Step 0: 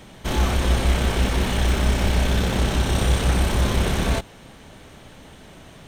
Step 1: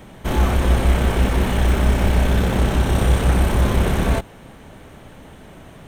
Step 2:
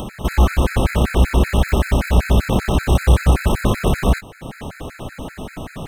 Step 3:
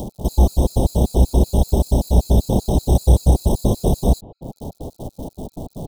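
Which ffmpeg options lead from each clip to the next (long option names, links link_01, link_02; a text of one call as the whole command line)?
ffmpeg -i in.wav -af "equalizer=frequency=4900:width_type=o:width=1.7:gain=-9,volume=3.5dB" out.wav
ffmpeg -i in.wav -filter_complex "[0:a]asplit=2[link_01][link_02];[link_02]acompressor=mode=upward:threshold=-17dB:ratio=2.5,volume=2.5dB[link_03];[link_01][link_03]amix=inputs=2:normalize=0,afftfilt=real='re*gt(sin(2*PI*5.2*pts/sr)*(1-2*mod(floor(b*sr/1024/1300),2)),0)':imag='im*gt(sin(2*PI*5.2*pts/sr)*(1-2*mod(floor(b*sr/1024/1300),2)),0)':win_size=1024:overlap=0.75,volume=-3dB" out.wav
ffmpeg -i in.wav -filter_complex "[0:a]acrossover=split=2800[link_01][link_02];[link_02]acrusher=bits=6:mix=0:aa=0.000001[link_03];[link_01][link_03]amix=inputs=2:normalize=0,asuperstop=centerf=1800:order=8:qfactor=0.6" out.wav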